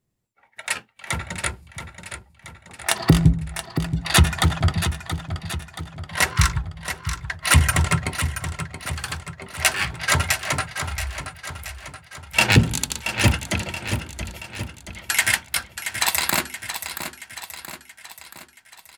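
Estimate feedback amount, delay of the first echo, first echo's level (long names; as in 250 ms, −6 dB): 53%, 677 ms, −9.5 dB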